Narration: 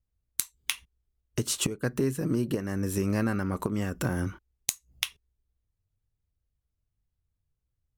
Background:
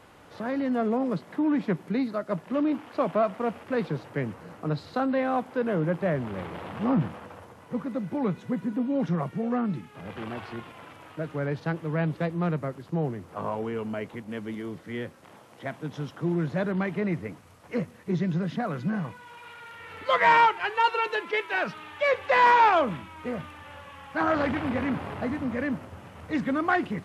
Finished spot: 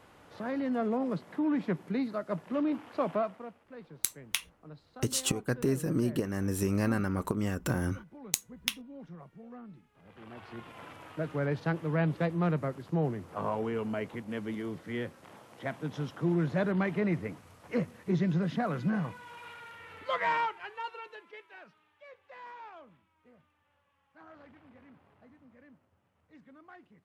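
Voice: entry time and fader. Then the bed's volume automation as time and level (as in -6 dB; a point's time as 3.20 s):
3.65 s, -1.5 dB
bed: 3.15 s -4.5 dB
3.58 s -20.5 dB
9.93 s -20.5 dB
10.81 s -1.5 dB
19.47 s -1.5 dB
22.06 s -29 dB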